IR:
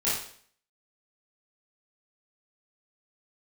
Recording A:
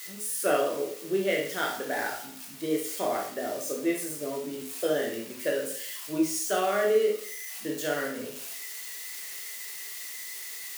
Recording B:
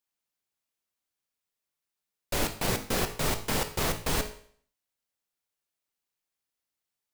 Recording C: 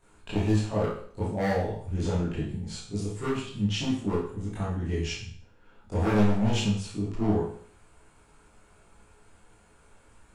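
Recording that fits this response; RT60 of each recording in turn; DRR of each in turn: C; 0.55, 0.55, 0.55 seconds; −1.0, 7.5, −11.0 decibels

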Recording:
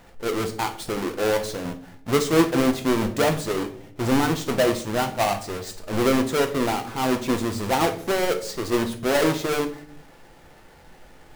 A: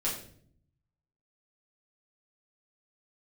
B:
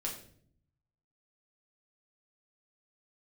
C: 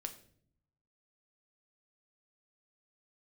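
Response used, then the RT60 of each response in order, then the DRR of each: C; 0.55, 0.55, 0.60 seconds; −6.5, −2.5, 6.0 decibels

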